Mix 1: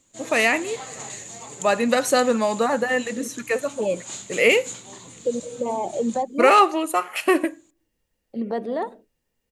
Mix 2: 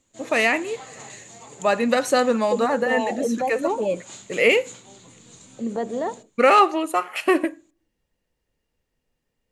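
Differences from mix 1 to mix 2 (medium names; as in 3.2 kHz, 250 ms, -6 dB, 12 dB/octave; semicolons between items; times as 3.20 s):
second voice: entry -2.75 s; background -3.5 dB; master: add treble shelf 8 kHz -8.5 dB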